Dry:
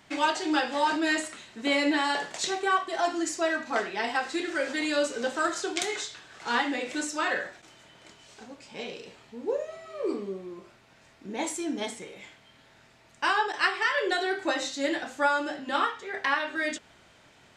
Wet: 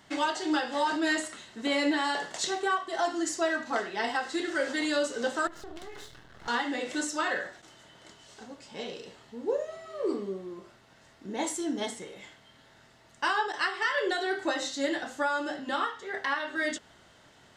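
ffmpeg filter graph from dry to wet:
-filter_complex "[0:a]asettb=1/sr,asplit=3[a][b][c];[a]atrim=end=5.474[d];[b]atrim=start=5.47:end=6.48,asetpts=PTS-STARTPTS,afade=t=in:d=0.004:c=qsin,afade=t=out:st=1.006:d=0.004:c=qsin,aemphasis=mode=reproduction:type=riaa,acompressor=threshold=-35dB:ratio=12:attack=3.2:release=140:knee=1:detection=peak,aeval=exprs='max(val(0),0)':c=same[e];[c]atrim=start=6.476[f];[d][e]acrossfade=d=0.004:c1=hsin:c2=qsin[g];[g][f]acrossfade=d=0.004:c1=qsin:c2=hsin,bandreject=f=2.4k:w=6.2,alimiter=limit=-18dB:level=0:latency=1:release=277"

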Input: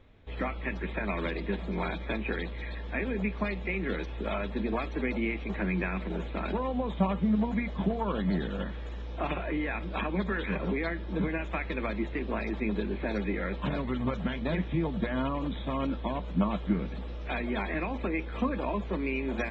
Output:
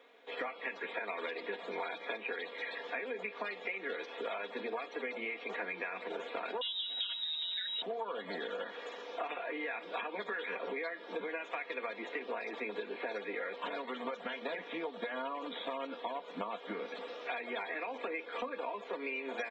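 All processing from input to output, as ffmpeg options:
-filter_complex "[0:a]asettb=1/sr,asplit=3[a][b][c];[a]atrim=end=6.614[d];[b]atrim=start=6.61:end=7.82,asetpts=PTS-STARTPTS,afade=t=in:d=0.004:c=qsin,afade=t=out:st=1.206:d=0.004:c=qsin,lowpass=f=3.3k:t=q:w=0.5098,lowpass=f=3.3k:t=q:w=0.6013,lowpass=f=3.3k:t=q:w=0.9,lowpass=f=3.3k:t=q:w=2.563,afreqshift=-3900,equalizer=f=210:t=o:w=1.9:g=14.5,aeval=exprs='val(0)+0.00447*(sin(2*PI*50*n/s)+sin(2*PI*2*50*n/s)/2+sin(2*PI*3*50*n/s)/3+sin(2*PI*4*50*n/s)/4+sin(2*PI*5*50*n/s)/5)':c=same[e];[c]atrim=start=7.816[f];[d][e]acrossfade=d=0.004:c1=hsin:c2=qsin[g];[g][f]acrossfade=d=0.004:c1=qsin:c2=hsin,highpass=f=400:w=0.5412,highpass=f=400:w=1.3066,aecho=1:1:4.2:0.6,acompressor=threshold=-39dB:ratio=6,volume=3dB"

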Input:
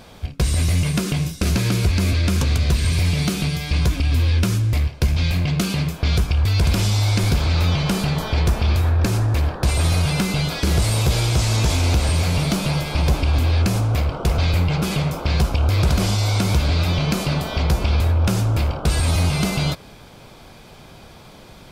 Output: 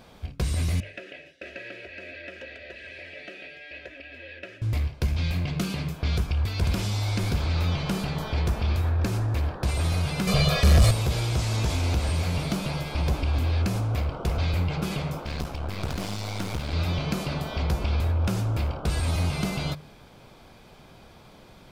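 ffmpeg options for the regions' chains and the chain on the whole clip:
-filter_complex "[0:a]asettb=1/sr,asplit=3[a][b][c];[a]atrim=end=0.804[d];[b]atrim=start=0.8:end=4.62,asetpts=PTS-STARTPTS,afade=t=in:d=0.004:c=qsin,afade=t=out:st=3.816:d=0.004:c=qsin,asplit=3[e][f][g];[e]bandpass=f=530:t=q:w=8,volume=0dB[h];[f]bandpass=f=1.84k:t=q:w=8,volume=-6dB[i];[g]bandpass=f=2.48k:t=q:w=8,volume=-9dB[j];[h][i][j]amix=inputs=3:normalize=0,equalizer=f=1.7k:t=o:w=2.3:g=10,aecho=1:1:3.1:0.59,atrim=end_sample=168462[k];[c]atrim=start=4.616[l];[d][k]acrossfade=d=0.004:c1=hsin:c2=qsin[m];[m][l]acrossfade=d=0.004:c1=qsin:c2=hsin,asettb=1/sr,asplit=3[n][o][p];[n]atrim=end=10.274[q];[o]atrim=start=10.27:end=10.91,asetpts=PTS-STARTPTS,afade=t=in:d=0.004:c=qsin,afade=t=out:st=0.636:d=0.004:c=qsin,aecho=1:1:1.7:0.87,atrim=end_sample=28224,aeval=exprs='0.596*sin(PI/2*1.41*val(0)/0.596)':c=same[r];[p]atrim=start=10.906[s];[q][r]acrossfade=d=0.004:c1=hsin:c2=qsin[t];[t][s]acrossfade=d=0.004:c1=qsin:c2=hsin,asettb=1/sr,asplit=3[u][v][w];[u]atrim=end=15.204[x];[v]atrim=start=15.2:end=16.73,asetpts=PTS-STARTPTS,afade=t=in:d=0.004:c=qsin,afade=t=out:st=1.526:d=0.004:c=qsin,highpass=f=110:p=1,aeval=exprs='clip(val(0),-1,0.0355)':c=same[y];[w]atrim=start=16.726[z];[x][y]acrossfade=d=0.004:c1=hsin:c2=qsin[aa];[aa][z]acrossfade=d=0.004:c1=qsin:c2=hsin,equalizer=f=9.1k:w=0.41:g=-4,bandreject=f=50:t=h:w=6,bandreject=f=100:t=h:w=6,bandreject=f=150:t=h:w=6,volume=-6.5dB"

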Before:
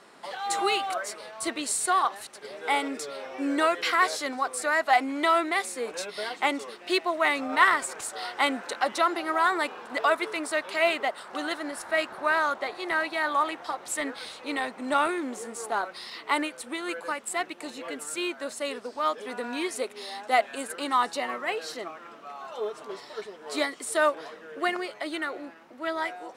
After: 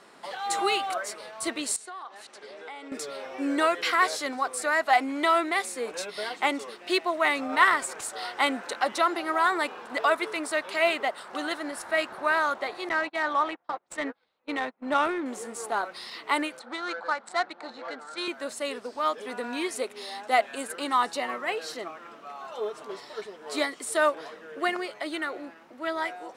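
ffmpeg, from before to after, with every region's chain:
-filter_complex "[0:a]asettb=1/sr,asplit=3[a][b][c];[a]atrim=end=1.764[d];[b]atrim=start=1.76:end=2.92,asetpts=PTS-STARTPTS,afade=t=in:d=0.004:c=qsin,afade=t=out:st=1.156:d=0.004:c=qsin,acompressor=threshold=-40dB:ratio=4:attack=3.2:release=140:knee=1:detection=peak,highpass=200,lowpass=7k[e];[c]atrim=start=2.916[f];[d][e]acrossfade=d=0.004:c1=hsin:c2=qsin[g];[g][f]acrossfade=d=0.004:c1=qsin:c2=hsin,asettb=1/sr,asplit=3[h][i][j];[h]atrim=end=12.894[k];[i]atrim=start=12.89:end=15.26,asetpts=PTS-STARTPTS,afade=t=in:d=0.004:c=qsin,afade=t=out:st=2.366:d=0.004:c=qsin,agate=range=-31dB:threshold=-35dB:ratio=16:release=100:detection=peak,adynamicsmooth=sensitivity=2.5:basefreq=3.1k[l];[j]atrim=start=15.256[m];[k][l]acrossfade=d=0.004:c1=hsin:c2=qsin[n];[n][m]acrossfade=d=0.004:c1=qsin:c2=hsin,asettb=1/sr,asplit=3[o][p][q];[o]atrim=end=16.594[r];[p]atrim=start=16.59:end=18.28,asetpts=PTS-STARTPTS,afade=t=in:d=0.004:c=qsin,afade=t=out:st=1.686:d=0.004:c=qsin,adynamicsmooth=sensitivity=5:basefreq=2k,highpass=f=190:w=0.5412,highpass=f=190:w=1.3066,equalizer=f=280:t=q:w=4:g=-7,equalizer=f=400:t=q:w=4:g=-7,equalizer=f=800:t=q:w=4:g=7,equalizer=f=1.4k:t=q:w=4:g=7,equalizer=f=2.7k:t=q:w=4:g=-7,equalizer=f=4.2k:t=q:w=4:g=9,lowpass=f=9.6k:w=0.5412,lowpass=f=9.6k:w=1.3066[s];[q]atrim=start=18.276[t];[r][s]acrossfade=d=0.004:c1=hsin:c2=qsin[u];[u][t]acrossfade=d=0.004:c1=qsin:c2=hsin"

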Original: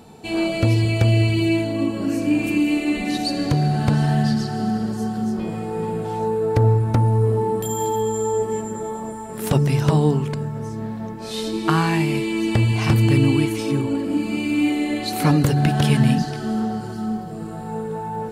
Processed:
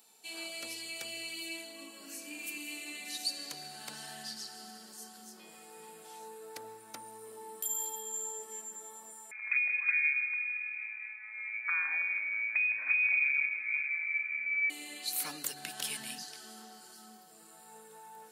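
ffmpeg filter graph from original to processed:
-filter_complex "[0:a]asettb=1/sr,asplit=3[a][b][c];[a]atrim=end=9.314[d];[b]atrim=start=9.31:end=14.7,asetpts=PTS-STARTPTS,afade=t=in:d=0.004:c=qsin,afade=t=out:st=5.386:d=0.004:c=qsin,aecho=1:1:162|324|486|648|810|972:0.282|0.149|0.0792|0.042|0.0222|0.0118,atrim=end_sample=237699,lowpass=f=2.2k:t=q:w=0.5098,lowpass=f=2.2k:t=q:w=0.6013,lowpass=f=2.2k:t=q:w=0.9,lowpass=f=2.2k:t=q:w=2.563,afreqshift=-2600[e];[c]atrim=start=14.696[f];[d][e]acrossfade=d=0.004:c1=hsin:c2=qsin[g];[g][f]acrossfade=d=0.004:c1=qsin:c2=hsin,highpass=f=170:w=0.5412,highpass=f=170:w=1.3066,aderivative,volume=-3.5dB"

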